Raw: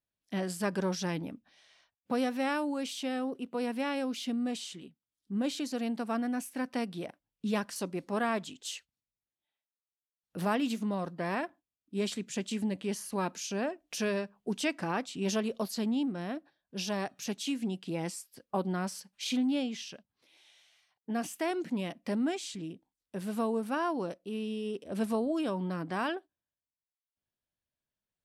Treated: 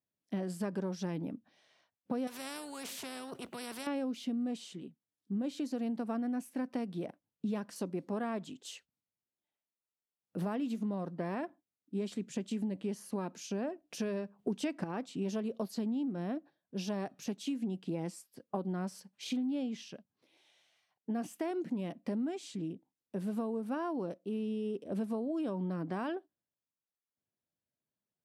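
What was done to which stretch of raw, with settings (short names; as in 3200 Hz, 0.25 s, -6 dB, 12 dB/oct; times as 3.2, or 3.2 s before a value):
2.27–3.87 spectral compressor 4:1
14.39–14.84 gain +8 dB
whole clip: HPF 130 Hz; tilt shelf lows +6 dB, about 870 Hz; compressor, threshold -30 dBFS; gain -2 dB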